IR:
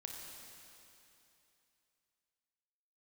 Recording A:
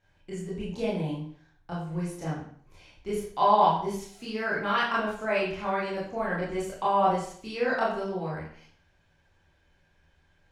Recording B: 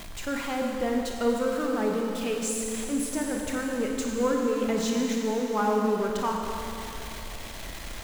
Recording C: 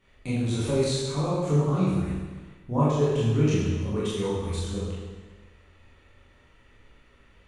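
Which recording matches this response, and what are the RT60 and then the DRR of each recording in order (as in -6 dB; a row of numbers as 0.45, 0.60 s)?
B; 0.55, 2.9, 1.4 s; -7.5, 0.0, -9.0 dB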